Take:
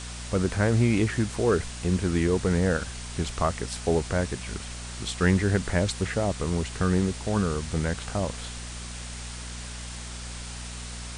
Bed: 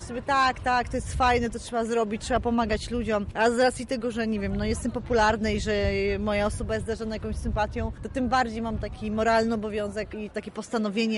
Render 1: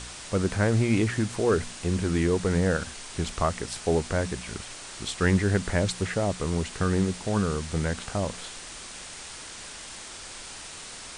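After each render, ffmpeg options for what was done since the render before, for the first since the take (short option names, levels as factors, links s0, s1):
-af "bandreject=f=60:t=h:w=4,bandreject=f=120:t=h:w=4,bandreject=f=180:t=h:w=4,bandreject=f=240:t=h:w=4"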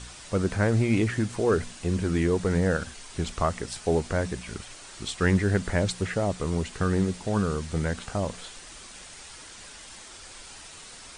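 -af "afftdn=nr=6:nf=-42"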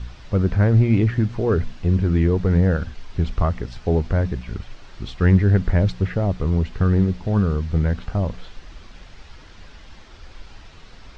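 -af "lowpass=f=5700:w=0.5412,lowpass=f=5700:w=1.3066,aemphasis=mode=reproduction:type=bsi"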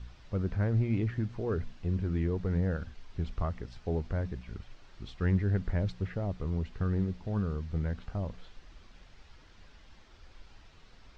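-af "volume=0.237"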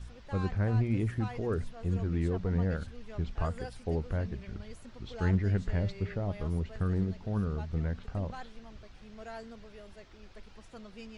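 -filter_complex "[1:a]volume=0.0794[s0];[0:a][s0]amix=inputs=2:normalize=0"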